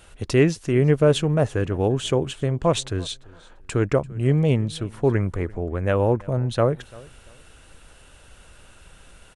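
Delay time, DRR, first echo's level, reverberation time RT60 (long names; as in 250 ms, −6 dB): 341 ms, no reverb audible, −23.0 dB, no reverb audible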